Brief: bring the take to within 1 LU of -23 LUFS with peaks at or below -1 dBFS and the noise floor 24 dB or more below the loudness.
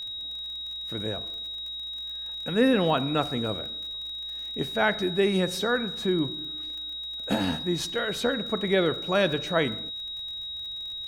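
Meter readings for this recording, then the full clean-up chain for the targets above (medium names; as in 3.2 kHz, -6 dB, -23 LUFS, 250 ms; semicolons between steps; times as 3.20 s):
tick rate 39 per s; steady tone 3.8 kHz; tone level -33 dBFS; loudness -27.5 LUFS; peak level -9.5 dBFS; loudness target -23.0 LUFS
-> de-click; band-stop 3.8 kHz, Q 30; trim +4.5 dB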